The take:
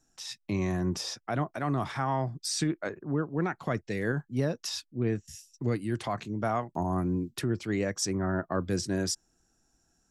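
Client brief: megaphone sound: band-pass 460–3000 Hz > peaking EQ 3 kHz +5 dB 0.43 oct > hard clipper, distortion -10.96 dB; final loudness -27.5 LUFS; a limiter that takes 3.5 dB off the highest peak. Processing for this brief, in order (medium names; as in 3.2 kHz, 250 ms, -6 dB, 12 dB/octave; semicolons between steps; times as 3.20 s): peak limiter -21.5 dBFS; band-pass 460–3000 Hz; peaking EQ 3 kHz +5 dB 0.43 oct; hard clipper -32 dBFS; trim +12.5 dB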